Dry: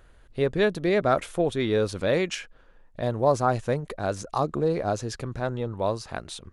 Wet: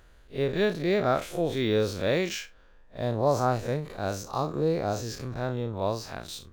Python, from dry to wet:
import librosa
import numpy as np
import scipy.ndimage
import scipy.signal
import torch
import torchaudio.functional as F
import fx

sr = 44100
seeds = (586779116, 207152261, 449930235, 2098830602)

y = fx.spec_blur(x, sr, span_ms=93.0)
y = fx.peak_eq(y, sr, hz=5800.0, db=7.0, octaves=1.5)
y = np.interp(np.arange(len(y)), np.arange(len(y))[::2], y[::2])